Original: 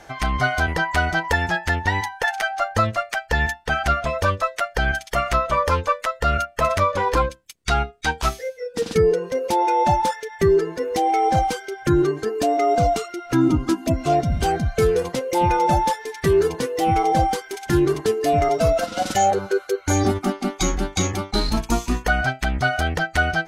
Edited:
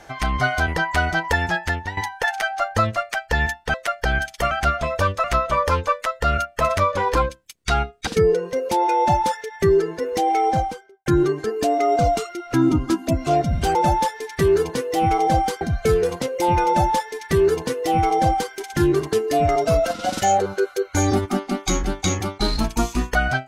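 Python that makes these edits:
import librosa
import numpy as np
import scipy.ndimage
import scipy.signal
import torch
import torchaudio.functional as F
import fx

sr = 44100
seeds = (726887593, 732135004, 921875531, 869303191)

y = fx.studio_fade_out(x, sr, start_s=11.18, length_s=0.67)
y = fx.edit(y, sr, fx.fade_out_to(start_s=1.63, length_s=0.34, floor_db=-14.5),
    fx.move(start_s=3.74, length_s=0.73, to_s=5.24),
    fx.cut(start_s=8.07, length_s=0.79),
    fx.duplicate(start_s=15.6, length_s=1.86, to_s=14.54), tone=tone)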